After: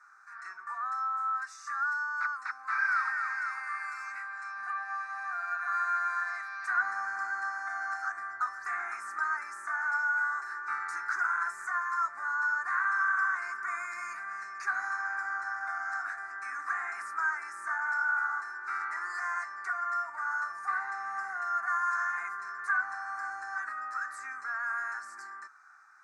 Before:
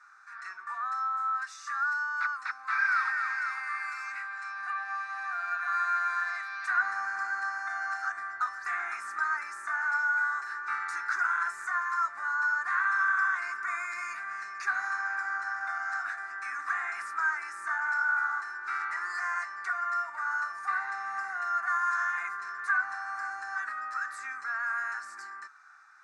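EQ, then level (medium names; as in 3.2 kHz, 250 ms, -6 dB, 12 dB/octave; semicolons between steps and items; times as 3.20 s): peaking EQ 3.2 kHz -13 dB 0.79 oct; 0.0 dB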